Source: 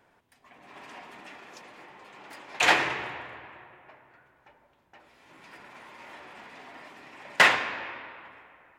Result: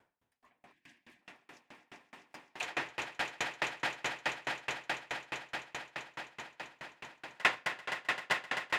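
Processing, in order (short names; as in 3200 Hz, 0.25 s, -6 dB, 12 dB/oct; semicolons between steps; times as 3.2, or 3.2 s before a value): spectral gain 0.72–1.21, 370–1500 Hz -27 dB; swelling echo 0.13 s, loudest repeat 8, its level -6 dB; dB-ramp tremolo decaying 4.7 Hz, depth 32 dB; gain -4 dB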